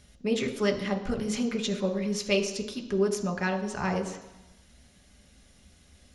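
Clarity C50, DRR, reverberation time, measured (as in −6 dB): 10.0 dB, 3.5 dB, 1.0 s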